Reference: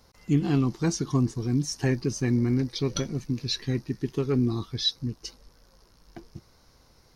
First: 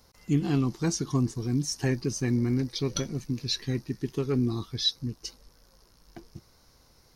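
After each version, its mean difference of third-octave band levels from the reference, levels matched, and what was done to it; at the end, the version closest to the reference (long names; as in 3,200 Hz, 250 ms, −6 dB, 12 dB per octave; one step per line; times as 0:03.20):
1.0 dB: high-shelf EQ 6,500 Hz +6.5 dB
level −2 dB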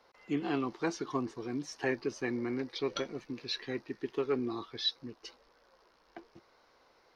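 6.5 dB: three-way crossover with the lows and the highs turned down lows −23 dB, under 340 Hz, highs −19 dB, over 3,700 Hz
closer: first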